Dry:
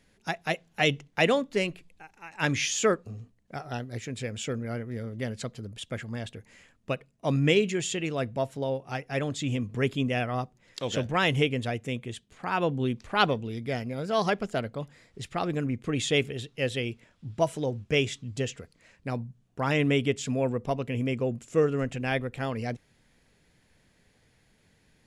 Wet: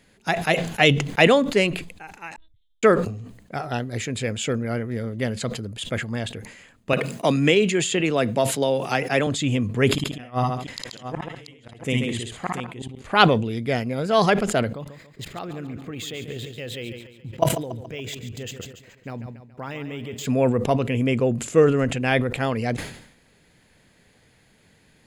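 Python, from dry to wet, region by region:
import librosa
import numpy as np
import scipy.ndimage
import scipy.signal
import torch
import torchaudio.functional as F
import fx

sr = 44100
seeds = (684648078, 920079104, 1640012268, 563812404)

y = fx.chain(x, sr, fx.cheby2_bandstop(low_hz=140.0, high_hz=2700.0, order=4, stop_db=60),
    fx.high_shelf(hz=2200.0, db=-8.0),
    fx.lpc_vocoder(seeds[0], excitation='pitch_kept', order=10), at=(2.36, 2.83))
y = fx.chain(y, sr, fx.highpass(hz=160.0, slope=12),
    fx.band_squash(depth_pct=70), at=(6.93, 9.27))
y = fx.chain(y, sr, fx.gate_flip(shuts_db=-20.0, range_db=-37),
    fx.echo_multitap(ms=(56, 57, 133, 197, 684), db=(-3.5, -4.0, -5.0, -14.5, -10.0)), at=(9.89, 13.07))
y = fx.chain(y, sr, fx.level_steps(step_db=20),
    fx.echo_feedback(ms=141, feedback_pct=50, wet_db=-11),
    fx.resample_linear(factor=2), at=(14.71, 20.26))
y = fx.low_shelf(y, sr, hz=66.0, db=-7.5)
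y = fx.notch(y, sr, hz=5600.0, q=8.5)
y = fx.sustainer(y, sr, db_per_s=79.0)
y = y * 10.0 ** (7.5 / 20.0)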